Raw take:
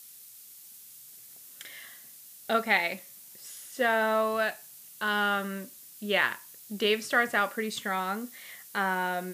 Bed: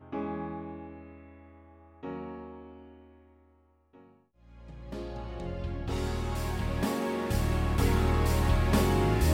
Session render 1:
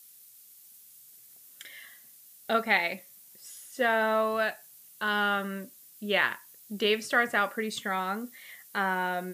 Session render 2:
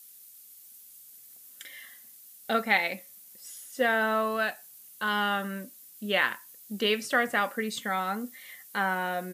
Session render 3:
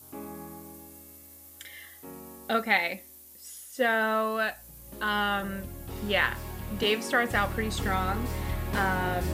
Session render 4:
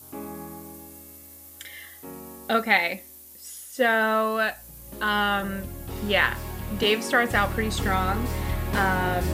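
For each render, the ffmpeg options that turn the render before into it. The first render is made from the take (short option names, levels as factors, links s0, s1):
-af "afftdn=nr=6:nf=-50"
-af "equalizer=f=13000:t=o:w=1:g=2.5,aecho=1:1:3.9:0.3"
-filter_complex "[1:a]volume=0.473[s0];[0:a][s0]amix=inputs=2:normalize=0"
-af "volume=1.58"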